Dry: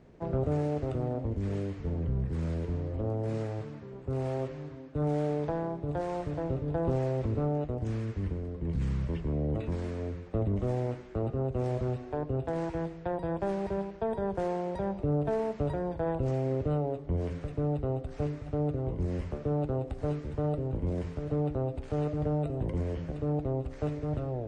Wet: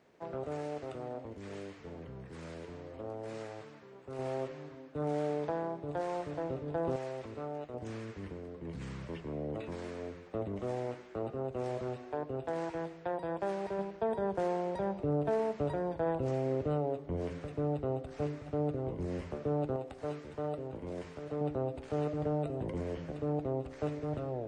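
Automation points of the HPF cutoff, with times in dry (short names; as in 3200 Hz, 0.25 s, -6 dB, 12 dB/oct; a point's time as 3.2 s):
HPF 6 dB/oct
890 Hz
from 4.19 s 400 Hz
from 6.96 s 1100 Hz
from 7.74 s 480 Hz
from 13.79 s 230 Hz
from 19.76 s 590 Hz
from 21.41 s 250 Hz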